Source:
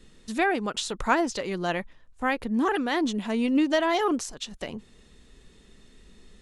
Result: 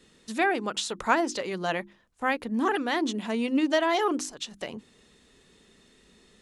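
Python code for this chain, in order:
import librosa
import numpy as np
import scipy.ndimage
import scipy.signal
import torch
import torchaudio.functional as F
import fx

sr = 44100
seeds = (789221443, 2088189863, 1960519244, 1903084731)

y = fx.highpass(x, sr, hz=180.0, slope=6)
y = fx.hum_notches(y, sr, base_hz=50, count=7)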